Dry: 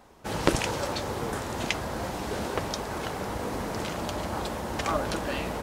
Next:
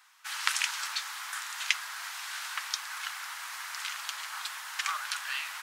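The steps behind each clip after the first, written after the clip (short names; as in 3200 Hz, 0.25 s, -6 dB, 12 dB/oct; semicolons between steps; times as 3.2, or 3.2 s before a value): inverse Chebyshev high-pass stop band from 500 Hz, stop band 50 dB; gain +2.5 dB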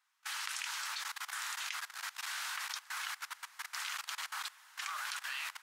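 level quantiser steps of 20 dB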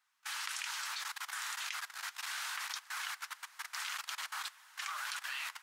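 flange 1.7 Hz, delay 1.2 ms, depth 4.9 ms, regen -62%; gain +4 dB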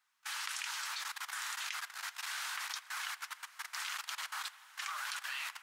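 analogue delay 83 ms, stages 2048, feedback 82%, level -22.5 dB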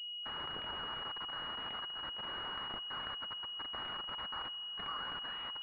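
air absorption 92 m; pulse-width modulation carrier 2900 Hz; gain +3 dB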